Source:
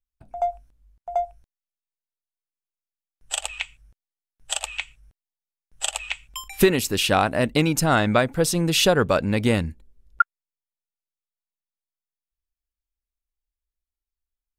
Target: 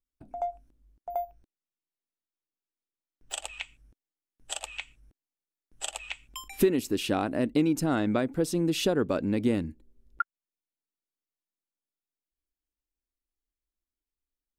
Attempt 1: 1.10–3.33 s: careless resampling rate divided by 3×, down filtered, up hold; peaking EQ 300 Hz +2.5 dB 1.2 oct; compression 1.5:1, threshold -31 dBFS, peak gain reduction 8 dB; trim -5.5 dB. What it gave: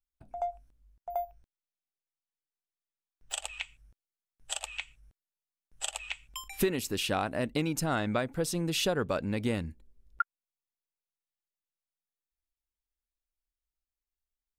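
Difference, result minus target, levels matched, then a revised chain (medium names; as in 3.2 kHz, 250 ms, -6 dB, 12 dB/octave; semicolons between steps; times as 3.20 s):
250 Hz band -3.0 dB
1.10–3.33 s: careless resampling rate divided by 3×, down filtered, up hold; peaking EQ 300 Hz +14 dB 1.2 oct; compression 1.5:1, threshold -31 dBFS, peak gain reduction 10.5 dB; trim -5.5 dB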